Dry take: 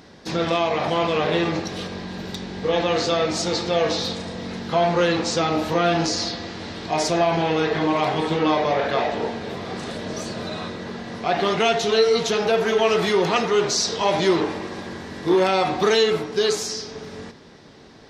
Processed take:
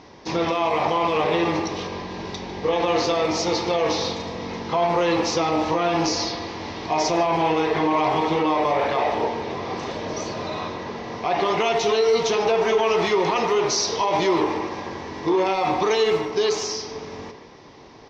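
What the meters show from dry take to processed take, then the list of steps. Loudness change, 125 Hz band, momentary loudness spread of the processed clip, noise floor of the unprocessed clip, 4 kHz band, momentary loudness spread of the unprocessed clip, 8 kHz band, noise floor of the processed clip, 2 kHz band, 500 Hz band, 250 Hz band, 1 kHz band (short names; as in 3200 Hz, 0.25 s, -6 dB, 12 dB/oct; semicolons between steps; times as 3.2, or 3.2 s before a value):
-0.5 dB, -3.5 dB, 11 LU, -46 dBFS, -2.5 dB, 13 LU, -1.0 dB, -44 dBFS, -1.5 dB, -0.5 dB, -1.0 dB, +2.0 dB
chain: EQ curve 130 Hz 0 dB, 200 Hz -5 dB, 310 Hz +2 dB, 660 Hz +1 dB, 1000 Hz +8 dB, 1500 Hz -5 dB, 2200 Hz +3 dB, 4000 Hz -3 dB, 6000 Hz +2 dB, 9300 Hz -27 dB; limiter -12.5 dBFS, peak gain reduction 9 dB; speakerphone echo 0.15 s, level -9 dB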